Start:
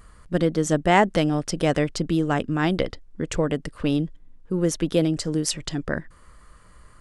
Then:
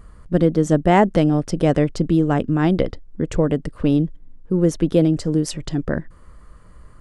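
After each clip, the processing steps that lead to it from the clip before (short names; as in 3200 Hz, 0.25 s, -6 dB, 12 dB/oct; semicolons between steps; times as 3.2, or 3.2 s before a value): tilt shelf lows +5.5 dB; gain +1 dB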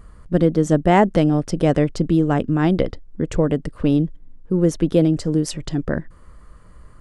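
nothing audible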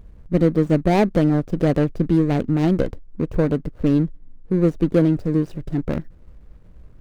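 median filter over 41 samples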